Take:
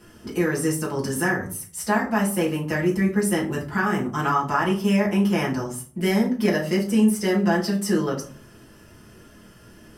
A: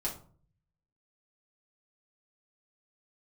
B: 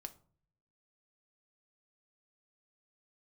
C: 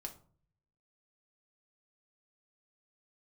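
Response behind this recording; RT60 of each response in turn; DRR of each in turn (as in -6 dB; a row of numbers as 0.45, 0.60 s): A; 0.45, 0.50, 0.45 s; -6.0, 7.5, 2.0 dB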